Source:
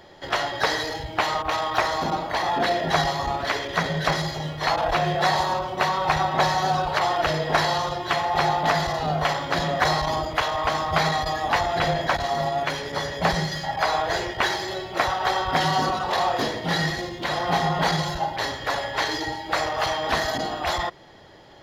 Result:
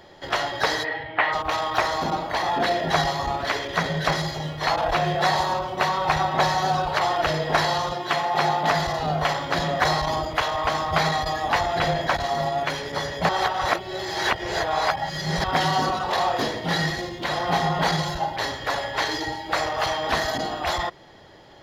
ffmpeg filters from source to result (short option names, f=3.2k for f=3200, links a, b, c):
-filter_complex "[0:a]asplit=3[a][b][c];[a]afade=t=out:st=0.83:d=0.02[d];[b]highpass=150,equalizer=f=200:t=q:w=4:g=-10,equalizer=f=360:t=q:w=4:g=-5,equalizer=f=1.9k:t=q:w=4:g=9,lowpass=f=3.1k:w=0.5412,lowpass=f=3.1k:w=1.3066,afade=t=in:st=0.83:d=0.02,afade=t=out:st=1.32:d=0.02[e];[c]afade=t=in:st=1.32:d=0.02[f];[d][e][f]amix=inputs=3:normalize=0,asettb=1/sr,asplit=3[g][h][i];[g]atrim=end=7.924[j];[h]atrim=start=7.92:end=8.71,asetpts=PTS-STARTPTS,afade=t=in:d=0.004:c=qsin,afade=t=out:st=0.786:d=0.004:c=qsin,highpass=f=130:w=0.5412,highpass=f=130:w=1.3066[k];[i]atrim=start=8.706[l];[j][k]acrossfade=d=0.004:c1=hsin:c2=qsin[m];[m][l]acrossfade=d=0.004:c1=qsin:c2=hsin,asplit=3[n][o][p];[n]atrim=end=13.292[q];[o]atrim=start=13.288:end=15.442,asetpts=PTS-STARTPTS,areverse[r];[p]atrim=start=15.438[s];[q][r]acrossfade=d=0.004:c1=hsin:c2=hsin[t];[t][s]acrossfade=d=0.004:c1=hsin:c2=hsin"